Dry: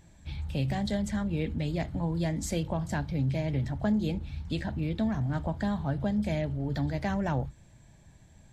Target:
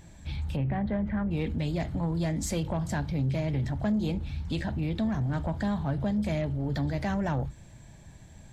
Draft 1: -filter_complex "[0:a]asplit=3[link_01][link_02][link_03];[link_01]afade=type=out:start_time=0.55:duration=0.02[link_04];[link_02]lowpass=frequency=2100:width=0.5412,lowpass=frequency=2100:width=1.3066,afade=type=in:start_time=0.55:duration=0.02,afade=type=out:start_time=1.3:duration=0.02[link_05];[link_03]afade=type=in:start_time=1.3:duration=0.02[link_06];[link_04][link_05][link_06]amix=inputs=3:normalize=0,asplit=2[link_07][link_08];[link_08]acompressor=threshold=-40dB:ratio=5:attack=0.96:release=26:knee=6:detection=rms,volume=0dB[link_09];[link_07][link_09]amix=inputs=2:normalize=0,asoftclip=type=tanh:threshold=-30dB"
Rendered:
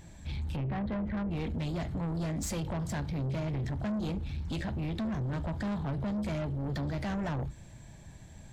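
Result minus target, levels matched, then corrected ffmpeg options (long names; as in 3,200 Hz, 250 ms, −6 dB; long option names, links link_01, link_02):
soft clipping: distortion +11 dB
-filter_complex "[0:a]asplit=3[link_01][link_02][link_03];[link_01]afade=type=out:start_time=0.55:duration=0.02[link_04];[link_02]lowpass=frequency=2100:width=0.5412,lowpass=frequency=2100:width=1.3066,afade=type=in:start_time=0.55:duration=0.02,afade=type=out:start_time=1.3:duration=0.02[link_05];[link_03]afade=type=in:start_time=1.3:duration=0.02[link_06];[link_04][link_05][link_06]amix=inputs=3:normalize=0,asplit=2[link_07][link_08];[link_08]acompressor=threshold=-40dB:ratio=5:attack=0.96:release=26:knee=6:detection=rms,volume=0dB[link_09];[link_07][link_09]amix=inputs=2:normalize=0,asoftclip=type=tanh:threshold=-20dB"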